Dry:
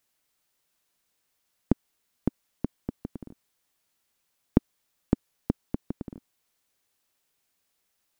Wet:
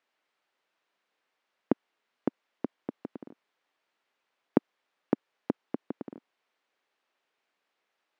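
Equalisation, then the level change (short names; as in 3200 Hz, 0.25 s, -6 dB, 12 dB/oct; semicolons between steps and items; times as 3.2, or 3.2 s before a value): BPF 350–2600 Hz; +4.0 dB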